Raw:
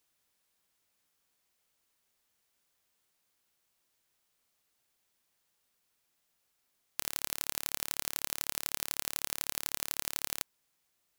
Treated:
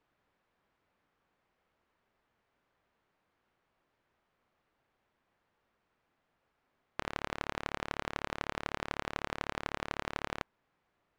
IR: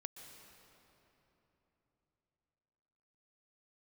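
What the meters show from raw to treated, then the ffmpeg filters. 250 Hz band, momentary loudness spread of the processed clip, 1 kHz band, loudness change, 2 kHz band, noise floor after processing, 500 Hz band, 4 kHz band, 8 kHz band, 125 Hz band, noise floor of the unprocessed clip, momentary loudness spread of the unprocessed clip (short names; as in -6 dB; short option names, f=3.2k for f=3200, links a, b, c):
+9.0 dB, 3 LU, +8.0 dB, -4.5 dB, +4.0 dB, -81 dBFS, +9.0 dB, -6.0 dB, -19.0 dB, +9.0 dB, -78 dBFS, 3 LU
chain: -af "lowpass=1.6k,volume=9dB"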